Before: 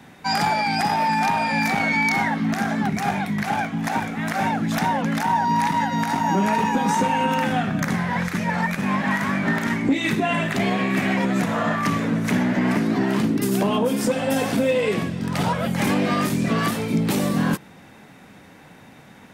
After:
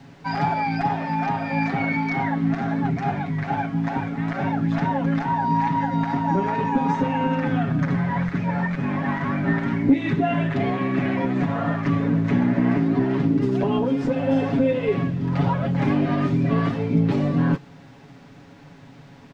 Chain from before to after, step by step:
spectral tilt −2 dB per octave
comb filter 7.2 ms, depth 94%
in parallel at −5 dB: bit-depth reduction 6 bits, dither triangular
on the sum: high-frequency loss of the air 180 metres
level −9 dB

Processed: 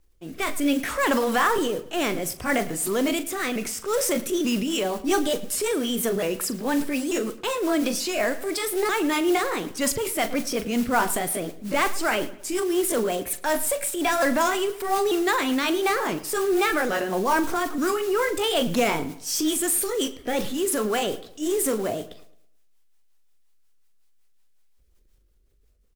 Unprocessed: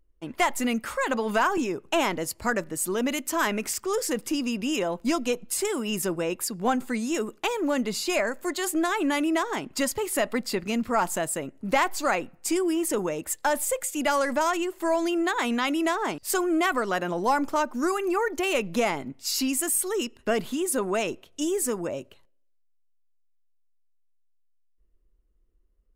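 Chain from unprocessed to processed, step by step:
pitch shifter swept by a sawtooth +3.5 semitones, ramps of 889 ms
noise that follows the level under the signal 17 dB
rotating-speaker cabinet horn 0.65 Hz, later 5.5 Hz, at 0:03.94
transient designer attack −4 dB, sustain +6 dB
double-tracking delay 42 ms −13.5 dB
on a send: feedback echo with a low-pass in the loop 109 ms, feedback 37%, low-pass 3,700 Hz, level −17 dB
on the sum: level +5.5 dB

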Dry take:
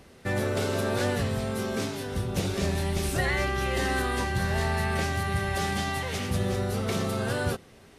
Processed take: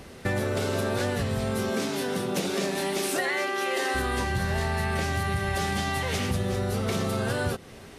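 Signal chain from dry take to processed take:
0:01.69–0:03.94: high-pass filter 140 Hz → 340 Hz 24 dB per octave
downward compressor 5 to 1, threshold −32 dBFS, peak gain reduction 9 dB
level +7.5 dB

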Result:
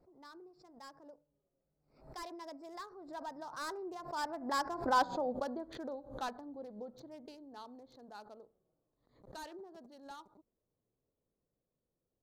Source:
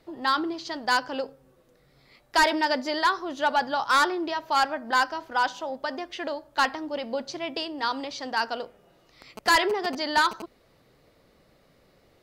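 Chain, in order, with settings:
adaptive Wiener filter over 15 samples
source passing by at 0:05.05, 29 m/s, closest 7.7 metres
parametric band 2,100 Hz −12.5 dB 1.7 octaves
background raised ahead of every attack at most 110 dB per second
level +1.5 dB

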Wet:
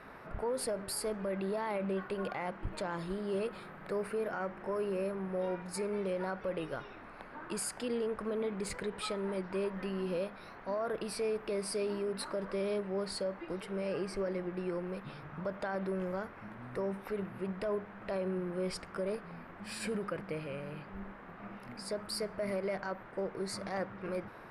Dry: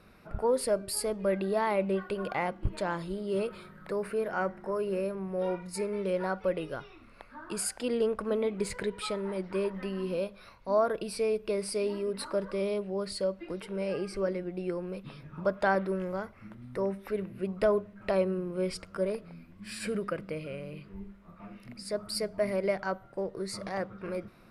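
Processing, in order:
brickwall limiter −25.5 dBFS, peak gain reduction 11 dB
noise in a band 110–1,700 Hz −50 dBFS
level −2 dB

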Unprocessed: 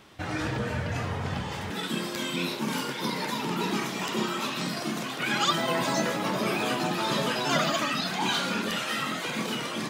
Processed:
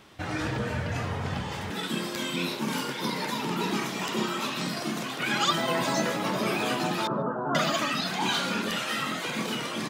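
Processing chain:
0:07.07–0:07.55: elliptic low-pass filter 1,400 Hz, stop band 40 dB
far-end echo of a speakerphone 150 ms, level −26 dB

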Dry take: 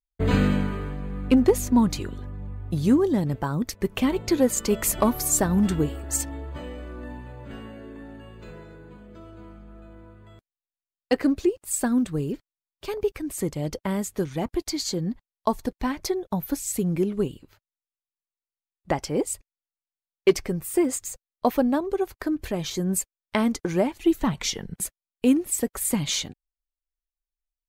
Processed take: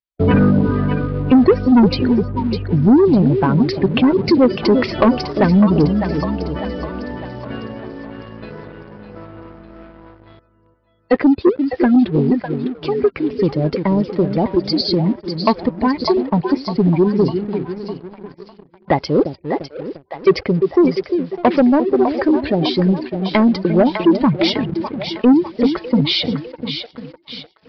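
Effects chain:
high-pass filter 90 Hz 12 dB per octave
gate on every frequency bin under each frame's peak −20 dB strong
echo with a time of its own for lows and highs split 530 Hz, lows 348 ms, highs 603 ms, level −8.5 dB
leveller curve on the samples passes 2
downsampling to 11,025 Hz
level +4 dB

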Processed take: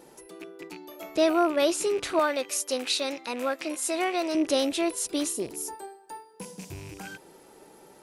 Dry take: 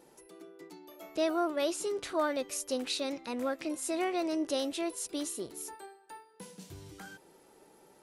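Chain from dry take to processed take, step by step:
loose part that buzzes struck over −54 dBFS, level −39 dBFS
0:02.19–0:04.35: high-pass filter 530 Hz 6 dB per octave
0:05.32–0:07.05: gain on a spectral selection 1,100–4,600 Hz −6 dB
level +7.5 dB

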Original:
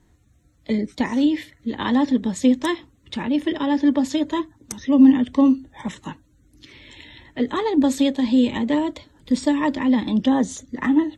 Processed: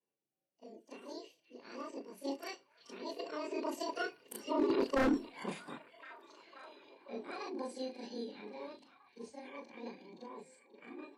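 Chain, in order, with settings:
every overlapping window played backwards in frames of 79 ms
source passing by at 0:04.94, 27 m/s, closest 1.6 metres
high-pass filter 180 Hz 24 dB per octave
parametric band 400 Hz +3.5 dB 0.26 octaves
reversed playback
downward compressor 4 to 1, threshold −40 dBFS, peak gain reduction 19 dB
reversed playback
notch comb filter 1,300 Hz
formants moved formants +5 semitones
wave folding −36 dBFS
echo through a band-pass that steps 532 ms, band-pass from 3,100 Hz, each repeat −0.7 octaves, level −11 dB
on a send at −16 dB: convolution reverb RT60 0.30 s, pre-delay 3 ms
on the sum: level +13 dB

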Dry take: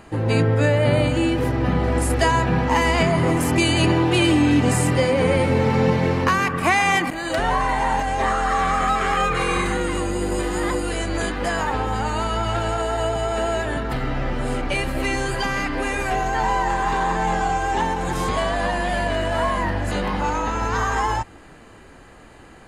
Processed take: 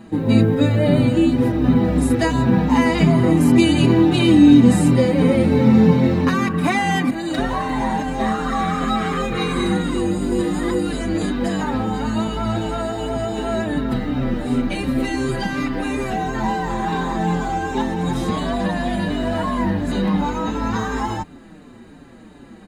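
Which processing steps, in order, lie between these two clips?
log-companded quantiser 8 bits
hollow resonant body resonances 220/3,800 Hz, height 15 dB, ringing for 25 ms
barber-pole flanger 5.6 ms −2.8 Hz
level −1 dB

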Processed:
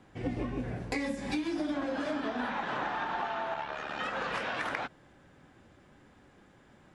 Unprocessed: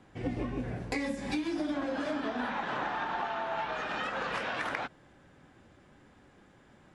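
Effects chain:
0:03.54–0:04.00: amplitude modulation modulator 73 Hz, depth 55%

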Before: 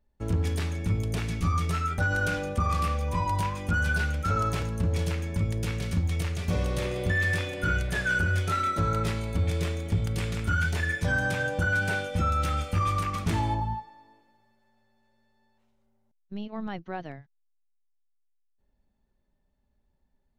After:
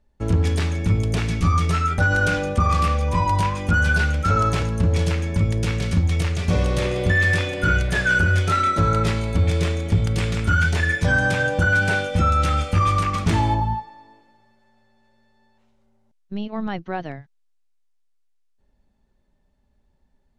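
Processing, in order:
low-pass filter 8,900 Hz 12 dB per octave
level +7.5 dB

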